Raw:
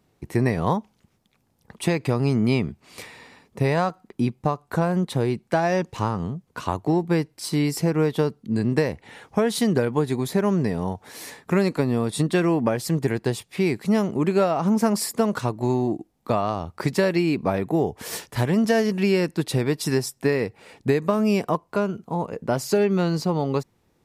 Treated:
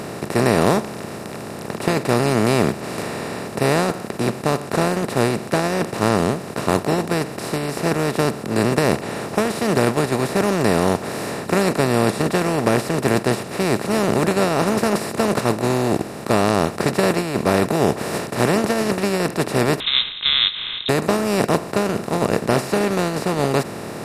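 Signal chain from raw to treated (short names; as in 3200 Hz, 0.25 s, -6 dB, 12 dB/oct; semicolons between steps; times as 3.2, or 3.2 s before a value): per-bin compression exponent 0.2; gate -12 dBFS, range -7 dB; 19.8–20.89 inverted band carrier 3900 Hz; gain -4 dB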